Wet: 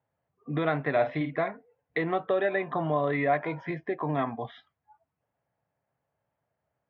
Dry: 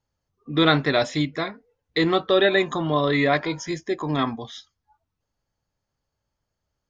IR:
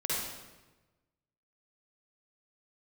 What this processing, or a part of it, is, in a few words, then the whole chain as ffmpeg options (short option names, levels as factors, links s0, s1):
bass amplifier: -filter_complex "[0:a]lowpass=5100,acompressor=threshold=0.0398:ratio=3,highpass=f=89:w=0.5412,highpass=f=89:w=1.3066,equalizer=f=92:t=q:w=4:g=-8,equalizer=f=220:t=q:w=4:g=-5,equalizer=f=340:t=q:w=4:g=-5,equalizer=f=680:t=q:w=4:g=7,equalizer=f=1300:t=q:w=4:g=-3,lowpass=f=2400:w=0.5412,lowpass=f=2400:w=1.3066,asettb=1/sr,asplit=3[s0][s1][s2];[s0]atrim=end=0.914[s3];[s1]atrim=start=0.91:end=1.37,asetpts=PTS-STARTPTS,afade=t=in:d=0.004:c=qsin,afade=t=out:st=0.456:d=0.004:c=qsin,asplit=2[s4][s5];[s5]adelay=50,volume=0.422[s6];[s4][s6]amix=inputs=2:normalize=0,atrim=end_sample=20286[s7];[s2]atrim=start=1.366[s8];[s3][s7]acrossfade=d=0.004:c1=hsin:c2=qsin[s9];[s9][s8]acrossfade=d=0.004:c1=qsin:c2=hsin,volume=1.26"